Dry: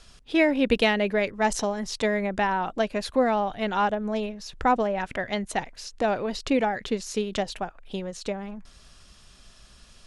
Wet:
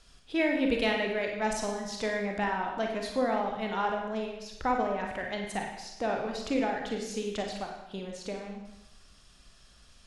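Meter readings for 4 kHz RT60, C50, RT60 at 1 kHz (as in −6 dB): 0.85 s, 3.0 dB, 0.90 s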